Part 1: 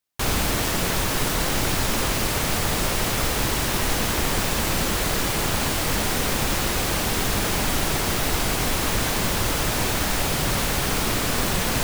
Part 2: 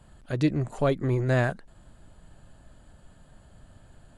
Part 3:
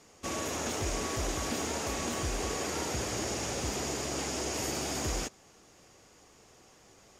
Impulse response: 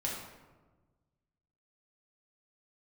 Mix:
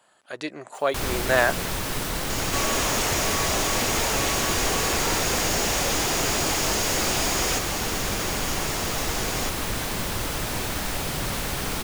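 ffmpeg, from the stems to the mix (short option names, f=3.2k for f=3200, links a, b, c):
-filter_complex "[0:a]acompressor=mode=upward:threshold=-29dB:ratio=2.5,adelay=750,volume=-5dB[a];[1:a]highpass=640,dynaudnorm=f=120:g=17:m=7.5dB,volume=2.5dB[b];[2:a]asplit=2[c][d];[d]highpass=f=720:p=1,volume=39dB,asoftclip=type=tanh:threshold=-17.5dB[e];[c][e]amix=inputs=2:normalize=0,lowpass=f=7.7k:p=1,volume=-6dB,adelay=2300,volume=-1.5dB[f];[a][b][f]amix=inputs=3:normalize=0"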